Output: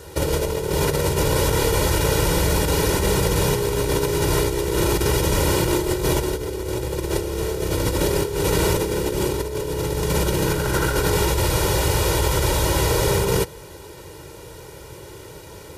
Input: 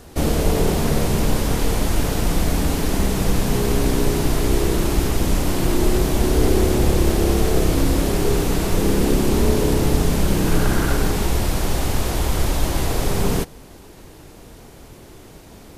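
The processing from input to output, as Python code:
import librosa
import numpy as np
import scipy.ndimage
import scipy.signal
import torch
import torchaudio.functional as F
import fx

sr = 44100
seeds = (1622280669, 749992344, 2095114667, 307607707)

y = scipy.signal.sosfilt(scipy.signal.butter(2, 78.0, 'highpass', fs=sr, output='sos'), x)
y = y + 0.9 * np.pad(y, (int(2.1 * sr / 1000.0), 0))[:len(y)]
y = fx.over_compress(y, sr, threshold_db=-20.0, ratio=-0.5)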